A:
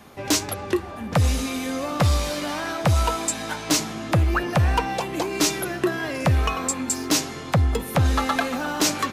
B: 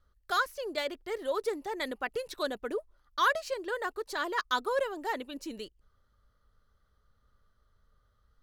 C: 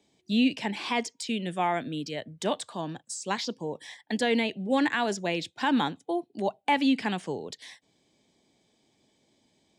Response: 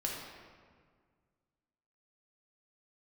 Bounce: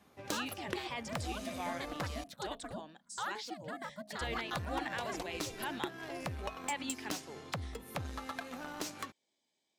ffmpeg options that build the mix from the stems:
-filter_complex "[0:a]highpass=49,acompressor=threshold=-26dB:ratio=4,aeval=exprs='0.188*(cos(1*acos(clip(val(0)/0.188,-1,1)))-cos(1*PI/2))+0.0473*(cos(3*acos(clip(val(0)/0.188,-1,1)))-cos(3*PI/2))':channel_layout=same,volume=-5dB,asplit=3[link_01][link_02][link_03];[link_01]atrim=end=2.24,asetpts=PTS-STARTPTS,afade=type=out:start_time=2.236:duration=0.004:curve=hsin[link_04];[link_02]atrim=start=2.24:end=4.21,asetpts=PTS-STARTPTS,volume=0[link_05];[link_03]atrim=start=4.21,asetpts=PTS-STARTPTS,afade=type=in:duration=0.004:curve=hsin[link_06];[link_04][link_05][link_06]concat=n=3:v=0:a=1[link_07];[1:a]bandreject=frequency=60:width_type=h:width=6,bandreject=frequency=120:width_type=h:width=6,bandreject=frequency=180:width_type=h:width=6,bandreject=frequency=240:width_type=h:width=6,bandreject=frequency=300:width_type=h:width=6,bandreject=frequency=360:width_type=h:width=6,bandreject=frequency=420:width_type=h:width=6,bandreject=frequency=480:width_type=h:width=6,acompressor=threshold=-33dB:ratio=2,aeval=exprs='val(0)*sin(2*PI*210*n/s)':channel_layout=same,volume=-4.5dB[link_08];[2:a]highpass=frequency=810:poles=1,volume=-11dB[link_09];[link_07][link_08][link_09]amix=inputs=3:normalize=0"

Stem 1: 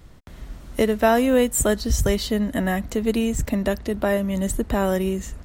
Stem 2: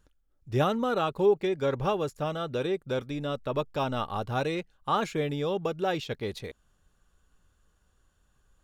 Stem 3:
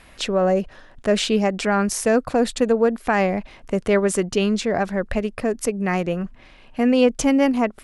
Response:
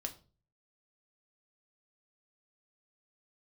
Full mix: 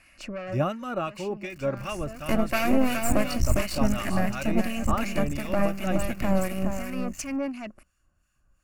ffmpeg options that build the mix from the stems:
-filter_complex "[0:a]acrusher=bits=6:dc=4:mix=0:aa=0.000001,aeval=exprs='max(val(0),0)':channel_layout=same,adelay=1500,volume=2.5dB,asplit=2[link_01][link_02];[link_02]volume=-6.5dB[link_03];[1:a]volume=1.5dB,asplit=2[link_04][link_05];[2:a]asoftclip=type=tanh:threshold=-18.5dB,volume=-5.5dB[link_06];[link_05]apad=whole_len=345376[link_07];[link_06][link_07]sidechaincompress=threshold=-31dB:ratio=5:attack=5.6:release=1140[link_08];[link_03]aecho=0:1:420:1[link_09];[link_01][link_04][link_08][link_09]amix=inputs=4:normalize=0,superequalizer=7b=0.282:9b=0.562:12b=1.58:13b=0.316,acrossover=split=1300[link_10][link_11];[link_10]aeval=exprs='val(0)*(1-0.7/2+0.7/2*cos(2*PI*2.8*n/s))':channel_layout=same[link_12];[link_11]aeval=exprs='val(0)*(1-0.7/2-0.7/2*cos(2*PI*2.8*n/s))':channel_layout=same[link_13];[link_12][link_13]amix=inputs=2:normalize=0"

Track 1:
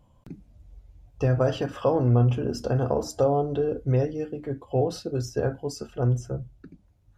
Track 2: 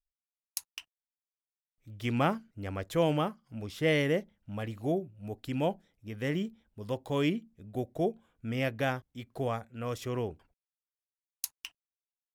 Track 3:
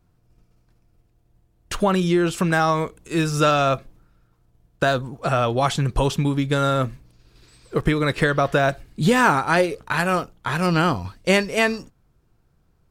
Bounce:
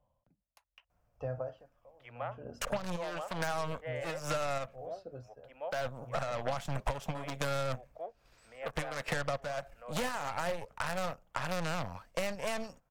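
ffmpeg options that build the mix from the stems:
ffmpeg -i stem1.wav -i stem2.wav -i stem3.wav -filter_complex "[0:a]lowpass=frequency=1300:poles=1,aeval=exprs='val(0)*pow(10,-28*(0.5-0.5*cos(2*PI*0.79*n/s))/20)':channel_layout=same,volume=-10.5dB[link_01];[1:a]aeval=exprs='if(lt(val(0),0),0.708*val(0),val(0))':channel_layout=same,acrossover=split=380 2600:gain=0.0891 1 0.0631[link_02][link_03][link_04];[link_02][link_03][link_04]amix=inputs=3:normalize=0,volume=-9.5dB,asplit=2[link_05][link_06];[2:a]equalizer=frequency=100:width_type=o:width=0.67:gain=-6,equalizer=frequency=4000:width_type=o:width=0.67:gain=-9,equalizer=frequency=10000:width_type=o:width=0.67:gain=-6,alimiter=limit=-11.5dB:level=0:latency=1:release=11,aeval=exprs='0.266*(cos(1*acos(clip(val(0)/0.266,-1,1)))-cos(1*PI/2))+0.0299*(cos(3*acos(clip(val(0)/0.266,-1,1)))-cos(3*PI/2))+0.0473*(cos(4*acos(clip(val(0)/0.266,-1,1)))-cos(4*PI/2))+0.0668*(cos(6*acos(clip(val(0)/0.266,-1,1)))-cos(6*PI/2))':channel_layout=same,adelay=900,volume=-3dB[link_07];[link_06]apad=whole_len=608760[link_08];[link_07][link_08]sidechaincompress=threshold=-50dB:ratio=8:attack=10:release=198[link_09];[link_01][link_05][link_09]amix=inputs=3:normalize=0,lowshelf=frequency=460:width_type=q:width=3:gain=-6.5,acrossover=split=210[link_10][link_11];[link_11]acompressor=threshold=-33dB:ratio=6[link_12];[link_10][link_12]amix=inputs=2:normalize=0" out.wav

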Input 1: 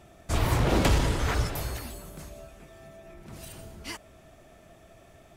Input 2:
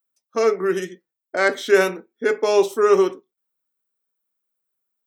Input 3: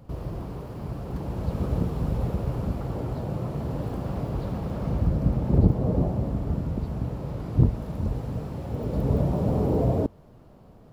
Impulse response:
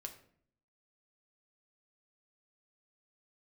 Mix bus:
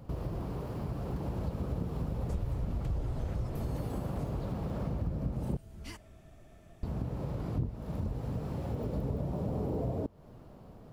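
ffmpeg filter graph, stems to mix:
-filter_complex "[0:a]lowshelf=frequency=220:gain=11.5,acrossover=split=150[link_01][link_02];[link_02]acompressor=threshold=-35dB:ratio=5[link_03];[link_01][link_03]amix=inputs=2:normalize=0,adelay=2000,volume=-9.5dB,asplit=2[link_04][link_05];[link_05]volume=-7.5dB[link_06];[2:a]volume=-0.5dB,asplit=3[link_07][link_08][link_09];[link_07]atrim=end=5.57,asetpts=PTS-STARTPTS,afade=type=out:start_time=5.566:duration=0.004:curve=hsin[link_10];[link_08]atrim=start=5.57:end=6.83,asetpts=PTS-STARTPTS,volume=0[link_11];[link_09]atrim=start=6.83,asetpts=PTS-STARTPTS,afade=type=in:duration=0.004:curve=hsin[link_12];[link_10][link_11][link_12]concat=n=3:v=0:a=1[link_13];[3:a]atrim=start_sample=2205[link_14];[link_06][link_14]afir=irnorm=-1:irlink=0[link_15];[link_04][link_13][link_15]amix=inputs=3:normalize=0,acompressor=threshold=-32dB:ratio=4"

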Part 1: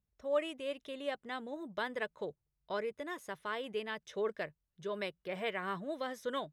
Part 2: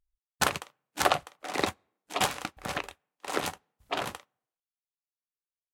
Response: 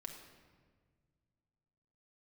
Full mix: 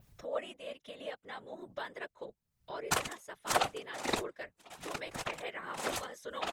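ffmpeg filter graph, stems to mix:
-filter_complex "[0:a]equalizer=frequency=210:width_type=o:width=1.3:gain=-8,volume=2dB,asplit=2[link_01][link_02];[1:a]adelay=2500,volume=0.5dB[link_03];[link_02]apad=whole_len=363367[link_04];[link_03][link_04]sidechaingate=range=-26dB:threshold=-54dB:ratio=16:detection=peak[link_05];[link_01][link_05]amix=inputs=2:normalize=0,adynamicequalizer=threshold=0.00316:dfrequency=7500:dqfactor=1.2:tfrequency=7500:tqfactor=1.2:attack=5:release=100:ratio=0.375:range=2.5:mode=boostabove:tftype=bell,acompressor=mode=upward:threshold=-35dB:ratio=2.5,afftfilt=real='hypot(re,im)*cos(2*PI*random(0))':imag='hypot(re,im)*sin(2*PI*random(1))':win_size=512:overlap=0.75"

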